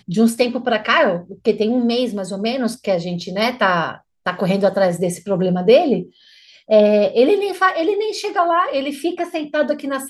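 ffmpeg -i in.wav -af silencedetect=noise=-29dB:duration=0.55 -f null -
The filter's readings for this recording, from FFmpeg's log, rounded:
silence_start: 6.03
silence_end: 6.70 | silence_duration: 0.67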